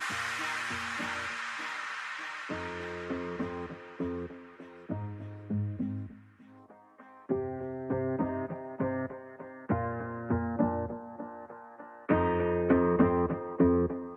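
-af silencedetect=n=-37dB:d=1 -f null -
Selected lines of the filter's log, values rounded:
silence_start: 6.06
silence_end: 7.29 | silence_duration: 1.23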